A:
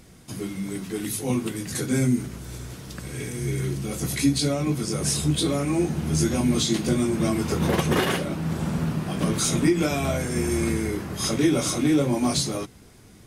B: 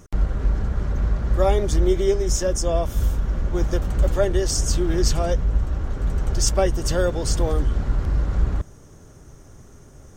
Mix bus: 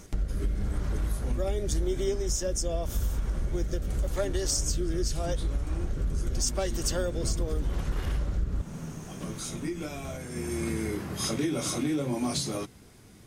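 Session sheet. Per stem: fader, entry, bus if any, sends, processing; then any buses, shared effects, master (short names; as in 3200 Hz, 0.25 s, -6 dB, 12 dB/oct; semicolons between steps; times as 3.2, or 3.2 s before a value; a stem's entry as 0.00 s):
-3.0 dB, 0.00 s, no send, auto duck -10 dB, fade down 1.95 s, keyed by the second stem
+0.5 dB, 0.00 s, no send, high shelf 3900 Hz +8.5 dB; rotary speaker horn 0.85 Hz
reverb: off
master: compressor 4:1, threshold -26 dBFS, peak gain reduction 11.5 dB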